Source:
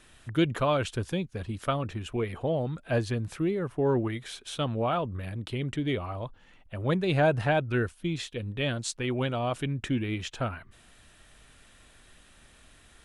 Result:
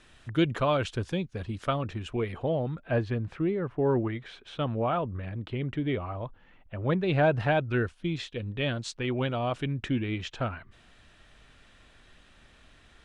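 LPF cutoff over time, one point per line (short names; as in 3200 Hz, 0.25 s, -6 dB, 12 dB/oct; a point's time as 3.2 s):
2.28 s 6500 Hz
2.82 s 2600 Hz
6.83 s 2600 Hz
7.49 s 5000 Hz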